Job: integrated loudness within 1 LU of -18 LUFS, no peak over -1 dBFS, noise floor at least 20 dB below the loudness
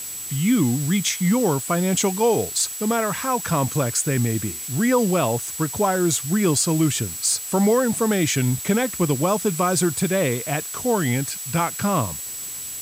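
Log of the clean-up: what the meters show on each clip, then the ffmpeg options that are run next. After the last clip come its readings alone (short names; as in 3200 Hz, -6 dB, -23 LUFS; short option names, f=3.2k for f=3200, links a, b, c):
steady tone 7800 Hz; tone level -32 dBFS; noise floor -33 dBFS; noise floor target -42 dBFS; loudness -21.5 LUFS; peak -8.0 dBFS; loudness target -18.0 LUFS
-> -af "bandreject=f=7.8k:w=30"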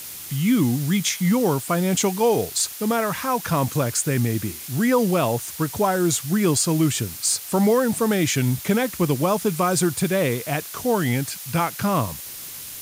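steady tone none; noise floor -36 dBFS; noise floor target -42 dBFS
-> -af "afftdn=nr=6:nf=-36"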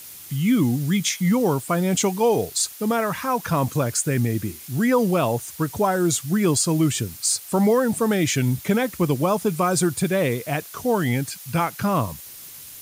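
noise floor -41 dBFS; noise floor target -42 dBFS
-> -af "afftdn=nr=6:nf=-41"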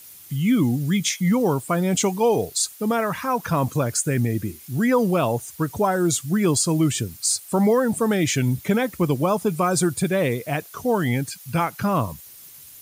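noise floor -44 dBFS; loudness -22.0 LUFS; peak -8.5 dBFS; loudness target -18.0 LUFS
-> -af "volume=4dB"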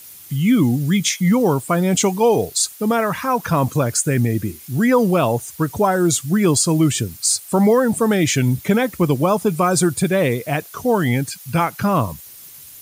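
loudness -18.0 LUFS; peak -4.5 dBFS; noise floor -40 dBFS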